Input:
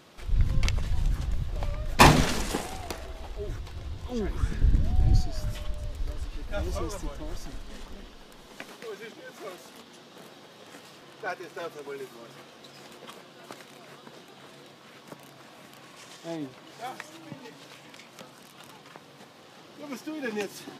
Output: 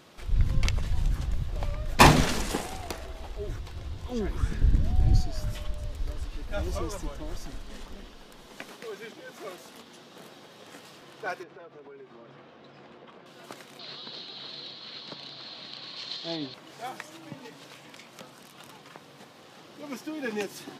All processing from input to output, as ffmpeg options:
ffmpeg -i in.wav -filter_complex "[0:a]asettb=1/sr,asplit=3[link_01][link_02][link_03];[link_01]atrim=end=11.434[link_04];[link_02]atrim=start=11.43:end=13.26,asetpts=PTS-STARTPTS,afade=type=in:duration=0.004:curve=qsin,afade=type=out:start_time=1.826:duration=0.004:curve=qsin,lowpass=4300,highshelf=frequency=3000:gain=-11.5,acompressor=threshold=-45dB:ratio=4:attack=3.2:release=140:knee=1:detection=peak[link_05];[link_03]atrim=start=13.256[link_06];[link_04][link_05]acrossfade=duration=0.004:curve1=hsin:curve2=qsin[link_07];[link_07][link_06]acrossfade=duration=0.004:curve1=qsin:curve2=hsin,asettb=1/sr,asplit=3[link_08][link_09][link_10];[link_08]atrim=end=13.794[link_11];[link_09]atrim=start=13.79:end=16.54,asetpts=PTS-STARTPTS,afade=type=in:duration=0.004:curve=qsin,afade=type=out:start_time=2.746:duration=0.004:curve=qsin,lowpass=frequency=4200:width_type=q:width=12,equalizer=frequency=3200:width=3.9:gain=5[link_12];[link_10]atrim=start=16.536[link_13];[link_11][link_12]acrossfade=duration=0.004:curve1=hsin:curve2=qsin[link_14];[link_14][link_13]acrossfade=duration=0.004:curve1=qsin:curve2=hsin" out.wav

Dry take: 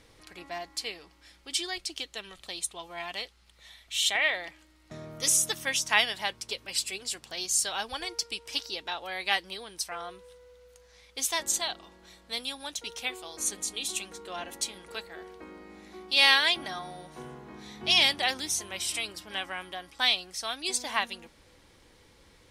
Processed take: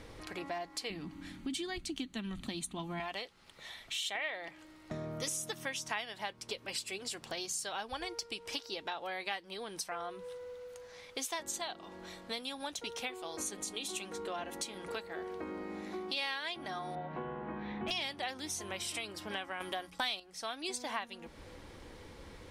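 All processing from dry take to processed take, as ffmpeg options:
ffmpeg -i in.wav -filter_complex "[0:a]asettb=1/sr,asplit=3[link_01][link_02][link_03];[link_01]atrim=end=0.904[link_04];[link_02]atrim=start=0.9:end=3,asetpts=PTS-STARTPTS,afade=type=in:duration=0.004:curve=qsin,afade=type=out:start_time=2.096:duration=0.004:curve=qsin,bandreject=frequency=5200:width=5.7,asoftclip=type=hard:threshold=-18.5dB,lowshelf=frequency=340:width_type=q:width=3:gain=11[link_05];[link_03]atrim=start=2.996[link_06];[link_04][link_05]acrossfade=duration=0.004:curve1=hsin:curve2=qsin[link_07];[link_07][link_06]acrossfade=duration=0.004:curve1=qsin:curve2=hsin,asettb=1/sr,asplit=3[link_08][link_09][link_10];[link_08]atrim=end=16.954[link_11];[link_09]atrim=start=16.95:end=17.91,asetpts=PTS-STARTPTS,afade=type=in:duration=0.004:curve=qsin,afade=type=out:start_time=0.956:duration=0.004:curve=qsin,lowpass=frequency=2800:width=0.5412,lowpass=frequency=2800:width=1.3066,asoftclip=type=hard:threshold=-30dB,asplit=2[link_12][link_13];[link_13]adelay=18,volume=-4dB[link_14];[link_12][link_14]amix=inputs=2:normalize=0,atrim=end_sample=42336[link_15];[link_10]atrim=start=17.906[link_16];[link_11][link_15]acrossfade=duration=0.004:curve1=hsin:curve2=qsin[link_17];[link_17][link_16]acrossfade=duration=0.004:curve1=qsin:curve2=hsin,asettb=1/sr,asplit=3[link_18][link_19][link_20];[link_18]atrim=end=19.604[link_21];[link_19]atrim=start=19.6:end=20.2,asetpts=PTS-STARTPTS,afade=type=in:duration=0.004:curve=qsin,afade=type=out:start_time=0.596:duration=0.004:curve=qsin,agate=range=-33dB:threshold=-48dB:ratio=3:release=100:detection=peak,highshelf=frequency=5900:gain=9,acontrast=88[link_22];[link_20]atrim=start=20.196[link_23];[link_21][link_22]acrossfade=duration=0.004:curve1=hsin:curve2=qsin[link_24];[link_24][link_23]acrossfade=duration=0.004:curve1=qsin:curve2=hsin,highshelf=frequency=2200:gain=-9,bandreject=frequency=60:width_type=h:width=6,bandreject=frequency=120:width_type=h:width=6,bandreject=frequency=180:width_type=h:width=6,acompressor=threshold=-47dB:ratio=4,volume=9dB" out.wav

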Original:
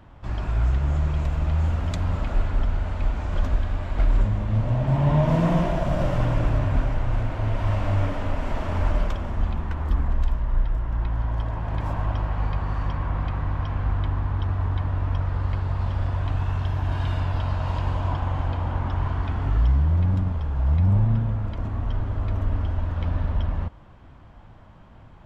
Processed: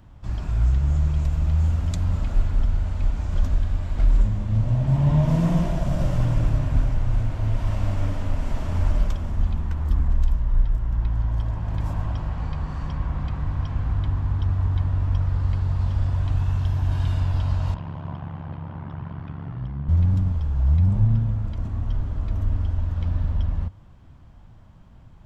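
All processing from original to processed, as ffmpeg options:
ffmpeg -i in.wav -filter_complex "[0:a]asettb=1/sr,asplit=3[link_01][link_02][link_03];[link_01]atrim=end=17.744[link_04];[link_02]atrim=start=17.74:end=19.89,asetpts=PTS-STARTPTS,afade=type=in:duration=0.004:curve=qsin,afade=type=out:start_time=2.146:duration=0.004:curve=qsin,tremolo=f=70:d=0.919,highpass=130,lowpass=2500[link_05];[link_03]atrim=start=19.886[link_06];[link_04][link_05]acrossfade=duration=0.004:curve1=hsin:curve2=qsin[link_07];[link_07][link_06]acrossfade=duration=0.004:curve1=qsin:curve2=hsin,bass=frequency=250:gain=9,treble=frequency=4000:gain=11,bandreject=frequency=50:width_type=h:width=6,bandreject=frequency=100:width_type=h:width=6,dynaudnorm=framelen=550:gausssize=17:maxgain=3.5dB,volume=-6.5dB" out.wav

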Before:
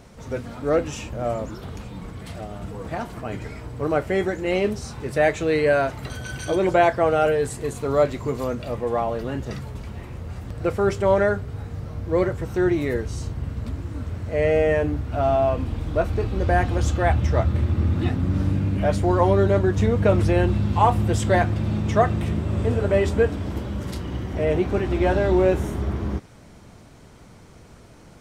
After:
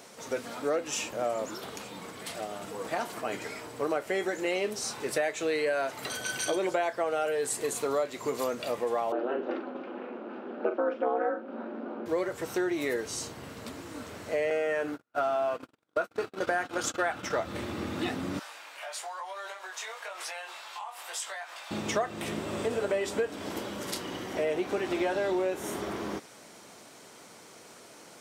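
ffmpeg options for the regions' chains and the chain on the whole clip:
ffmpeg -i in.wav -filter_complex "[0:a]asettb=1/sr,asplit=3[link_01][link_02][link_03];[link_01]atrim=end=9.124[link_04];[link_02]atrim=start=9.12:end=12.06,asetpts=PTS-STARTPTS,afade=type=in:duration=0.004:curve=qsin,afade=type=out:start_time=2.936:duration=0.004:curve=qsin,asplit=2[link_05][link_06];[link_06]adelay=41,volume=-8.5dB[link_07];[link_05][link_07]amix=inputs=2:normalize=0,atrim=end_sample=129654,aeval=exprs='val(0)*sin(2*PI*130*n/s)':channel_layout=same,highpass=frequency=240:width=0.5412,highpass=frequency=240:width=1.3066,equalizer=frequency=240:width_type=q:width=4:gain=6,equalizer=frequency=360:width_type=q:width=4:gain=9,equalizer=frequency=520:width_type=q:width=4:gain=8,equalizer=frequency=810:width_type=q:width=4:gain=5,equalizer=frequency=1400:width_type=q:width=4:gain=7,equalizer=frequency=2000:width_type=q:width=4:gain=-8,lowpass=frequency=2700:width=0.5412,lowpass=frequency=2700:width=1.3066[link_08];[link_03]atrim=start=12.056[link_09];[link_04][link_08]acrossfade=duration=0.004:curve1=hsin:curve2=qsin[link_10];[link_10][link_09]acrossfade=duration=0.004:curve1=qsin:curve2=hsin,asettb=1/sr,asplit=3[link_11][link_12][link_13];[link_11]atrim=end=14.504[link_14];[link_12]atrim=start=14.5:end=17.37,asetpts=PTS-STARTPTS,afade=type=in:duration=0.004:curve=qsin,afade=type=out:start_time=2.866:duration=0.004:curve=qsin,highpass=110,agate=range=-47dB:threshold=-27dB:ratio=16:release=100:detection=peak,equalizer=frequency=1400:width_type=o:width=0.34:gain=10.5[link_15];[link_13]atrim=start=17.366[link_16];[link_14][link_15]acrossfade=duration=0.004:curve1=hsin:curve2=qsin[link_17];[link_17][link_16]acrossfade=duration=0.004:curve1=qsin:curve2=hsin,asettb=1/sr,asplit=3[link_18][link_19][link_20];[link_18]atrim=end=18.394[link_21];[link_19]atrim=start=18.39:end=21.71,asetpts=PTS-STARTPTS,afade=type=in:duration=0.004:curve=qsin,afade=type=out:start_time=3.316:duration=0.004:curve=qsin,highpass=frequency=790:width=0.5412,highpass=frequency=790:width=1.3066,acompressor=threshold=-33dB:ratio=12:attack=3.2:release=140:knee=1:detection=peak,flanger=delay=18.5:depth=3.8:speed=1[link_22];[link_20]atrim=start=21.706[link_23];[link_21][link_22]acrossfade=duration=0.004:curve1=hsin:curve2=qsin[link_24];[link_24][link_23]acrossfade=duration=0.004:curve1=qsin:curve2=hsin,highpass=350,highshelf=frequency=3600:gain=8,acompressor=threshold=-26dB:ratio=6" out.wav

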